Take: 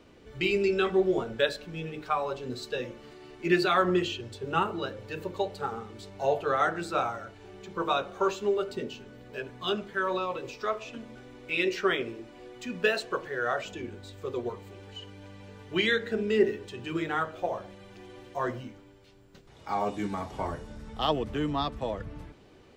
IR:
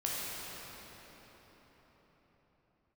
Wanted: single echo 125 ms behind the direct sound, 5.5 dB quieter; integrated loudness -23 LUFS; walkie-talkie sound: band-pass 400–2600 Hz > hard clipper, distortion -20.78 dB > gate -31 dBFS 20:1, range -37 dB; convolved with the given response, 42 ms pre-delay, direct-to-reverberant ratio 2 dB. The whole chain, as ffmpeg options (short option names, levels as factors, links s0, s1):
-filter_complex "[0:a]aecho=1:1:125:0.531,asplit=2[s0][s1];[1:a]atrim=start_sample=2205,adelay=42[s2];[s1][s2]afir=irnorm=-1:irlink=0,volume=0.398[s3];[s0][s3]amix=inputs=2:normalize=0,highpass=400,lowpass=2600,asoftclip=type=hard:threshold=0.112,agate=range=0.0141:threshold=0.0282:ratio=20,volume=2.11"